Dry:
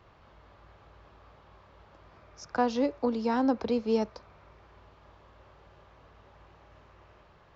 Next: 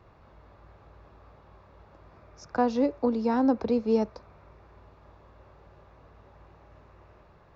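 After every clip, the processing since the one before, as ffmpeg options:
-af "tiltshelf=f=1.1k:g=3.5,bandreject=f=3.1k:w=10"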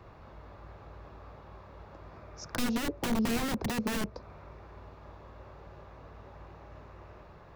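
-filter_complex "[0:a]aeval=exprs='(mod(15.8*val(0)+1,2)-1)/15.8':c=same,acrossover=split=420[a][b];[b]acompressor=threshold=-40dB:ratio=4[c];[a][c]amix=inputs=2:normalize=0,volume=4.5dB"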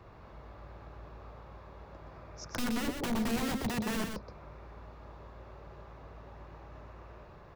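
-af "asoftclip=type=tanh:threshold=-22dB,aecho=1:1:123:0.531,volume=-1.5dB"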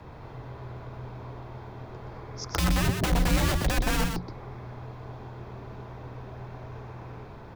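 -af "afreqshift=-180,volume=8.5dB"

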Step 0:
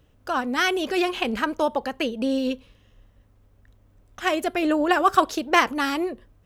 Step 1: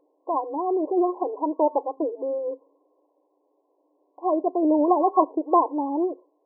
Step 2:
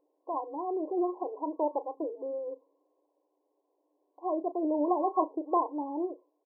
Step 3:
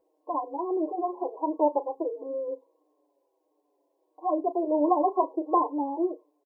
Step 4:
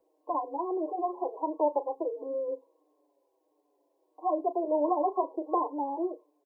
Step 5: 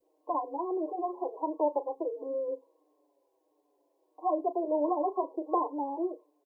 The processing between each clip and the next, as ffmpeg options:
-af "afftfilt=real='re*between(b*sr/4096,270,1100)':imag='im*between(b*sr/4096,270,1100)':win_size=4096:overlap=0.75,volume=2dB"
-filter_complex "[0:a]asplit=2[a][b];[b]adelay=34,volume=-12.5dB[c];[a][c]amix=inputs=2:normalize=0,volume=-8.5dB"
-filter_complex "[0:a]asplit=2[a][b];[b]adelay=5.7,afreqshift=-1.5[c];[a][c]amix=inputs=2:normalize=1,volume=7dB"
-filter_complex "[0:a]acrossover=split=370|440|540[a][b][c][d];[a]acompressor=threshold=-43dB:ratio=6[e];[d]alimiter=limit=-23.5dB:level=0:latency=1:release=152[f];[e][b][c][f]amix=inputs=4:normalize=0"
-af "adynamicequalizer=threshold=0.0112:dfrequency=870:dqfactor=1.1:tfrequency=870:tqfactor=1.1:attack=5:release=100:ratio=0.375:range=2:mode=cutabove:tftype=bell"

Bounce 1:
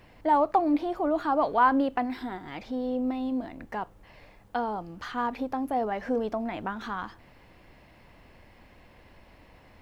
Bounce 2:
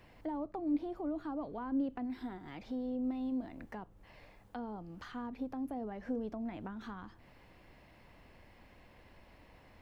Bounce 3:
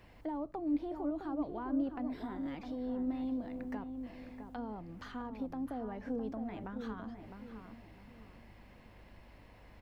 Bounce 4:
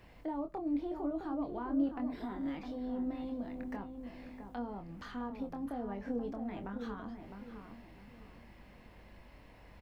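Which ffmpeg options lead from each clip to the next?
-filter_complex "[0:a]acrossover=split=350[a][b];[b]acompressor=threshold=-43dB:ratio=4[c];[a][c]amix=inputs=2:normalize=0,volume=-5dB"
-filter_complex "[0:a]aeval=exprs='val(0)+0.000631*(sin(2*PI*50*n/s)+sin(2*PI*2*50*n/s)/2+sin(2*PI*3*50*n/s)/3+sin(2*PI*4*50*n/s)/4+sin(2*PI*5*50*n/s)/5)':c=same,asplit=2[a][b];[b]adelay=659,lowpass=f=1.3k:p=1,volume=-6.5dB,asplit=2[c][d];[d]adelay=659,lowpass=f=1.3k:p=1,volume=0.37,asplit=2[e][f];[f]adelay=659,lowpass=f=1.3k:p=1,volume=0.37,asplit=2[g][h];[h]adelay=659,lowpass=f=1.3k:p=1,volume=0.37[i];[c][e][g][i]amix=inputs=4:normalize=0[j];[a][j]amix=inputs=2:normalize=0"
-filter_complex "[0:a]asplit=2[a][b];[b]adelay=25,volume=-6.5dB[c];[a][c]amix=inputs=2:normalize=0"

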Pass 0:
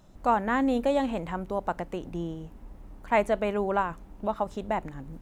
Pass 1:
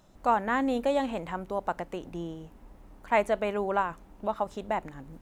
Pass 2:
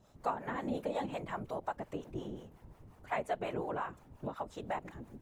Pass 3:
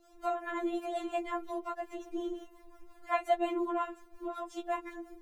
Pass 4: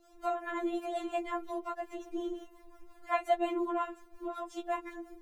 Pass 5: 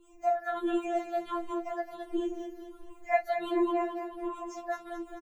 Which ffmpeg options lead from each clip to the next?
-af "lowshelf=f=260:g=-6.5"
-filter_complex "[0:a]acompressor=threshold=-30dB:ratio=3,acrossover=split=510[a][b];[a]aeval=exprs='val(0)*(1-0.7/2+0.7/2*cos(2*PI*5.6*n/s))':c=same[c];[b]aeval=exprs='val(0)*(1-0.7/2-0.7/2*cos(2*PI*5.6*n/s))':c=same[d];[c][d]amix=inputs=2:normalize=0,afftfilt=real='hypot(re,im)*cos(2*PI*random(0))':imag='hypot(re,im)*sin(2*PI*random(1))':win_size=512:overlap=0.75,volume=5dB"
-af "afftfilt=real='re*4*eq(mod(b,16),0)':imag='im*4*eq(mod(b,16),0)':win_size=2048:overlap=0.75,volume=6.5dB"
-af anull
-af "afftfilt=real='re*pow(10,22/40*sin(2*PI*(0.66*log(max(b,1)*sr/1024/100)/log(2)-(-1.4)*(pts-256)/sr)))':imag='im*pow(10,22/40*sin(2*PI*(0.66*log(max(b,1)*sr/1024/100)/log(2)-(-1.4)*(pts-256)/sr)))':win_size=1024:overlap=0.75,aecho=1:1:217|434|651|868|1085|1302:0.376|0.184|0.0902|0.0442|0.0217|0.0106,volume=-4dB"

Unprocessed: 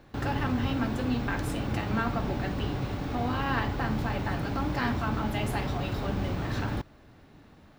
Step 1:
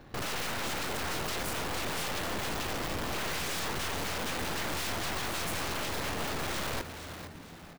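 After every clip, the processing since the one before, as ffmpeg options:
-filter_complex "[0:a]aeval=exprs='(mod(29.9*val(0)+1,2)-1)/29.9':c=same,aeval=exprs='(tanh(112*val(0)+0.8)-tanh(0.8))/112':c=same,asplit=5[a][b][c][d][e];[b]adelay=459,afreqshift=84,volume=-10dB[f];[c]adelay=918,afreqshift=168,volume=-18.2dB[g];[d]adelay=1377,afreqshift=252,volume=-26.4dB[h];[e]adelay=1836,afreqshift=336,volume=-34.5dB[i];[a][f][g][h][i]amix=inputs=5:normalize=0,volume=7.5dB"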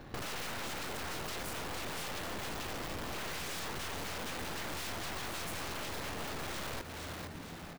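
-af "acompressor=threshold=-42dB:ratio=3,volume=2.5dB"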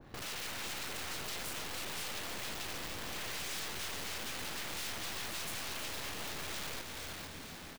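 -af "aecho=1:1:318|636|954|1272|1590|1908:0.398|0.211|0.112|0.0593|0.0314|0.0166,adynamicequalizer=threshold=0.00158:dfrequency=1800:dqfactor=0.7:tfrequency=1800:tqfactor=0.7:attack=5:release=100:ratio=0.375:range=3.5:mode=boostabove:tftype=highshelf,volume=-5.5dB"

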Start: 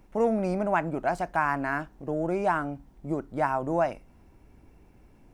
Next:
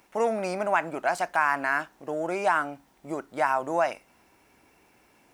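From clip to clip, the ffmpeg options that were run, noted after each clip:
-filter_complex "[0:a]highpass=f=1.5k:p=1,asplit=2[a][b];[b]alimiter=limit=-24dB:level=0:latency=1,volume=3dB[c];[a][c]amix=inputs=2:normalize=0,volume=2dB"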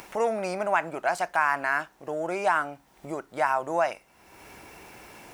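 -af "equalizer=f=260:t=o:w=0.49:g=-5.5,acompressor=mode=upward:threshold=-34dB:ratio=2.5"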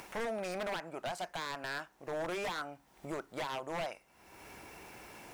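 -af "alimiter=limit=-19.5dB:level=0:latency=1:release=446,aeval=exprs='0.0447*(abs(mod(val(0)/0.0447+3,4)-2)-1)':c=same,volume=-4dB"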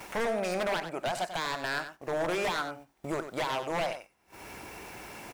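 -af "agate=range=-16dB:threshold=-56dB:ratio=16:detection=peak,aecho=1:1:93:0.316,volume=6.5dB"

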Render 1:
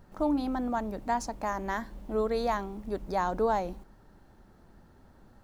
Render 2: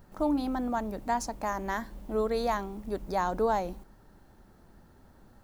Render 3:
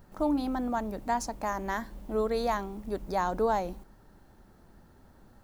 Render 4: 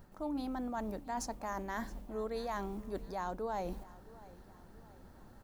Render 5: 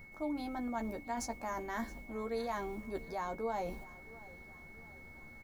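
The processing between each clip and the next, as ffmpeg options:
-af "highshelf=f=8.5k:g=7.5"
-af anull
-af "areverse,acompressor=threshold=-36dB:ratio=5,areverse,aecho=1:1:669|1338|2007|2676:0.1|0.048|0.023|0.0111"
-filter_complex "[0:a]asplit=2[a][b];[b]adelay=13,volume=-5.5dB[c];[a][c]amix=inputs=2:normalize=0,aeval=exprs='val(0)+0.00251*sin(2*PI*2200*n/s)':c=same,volume=-1dB"

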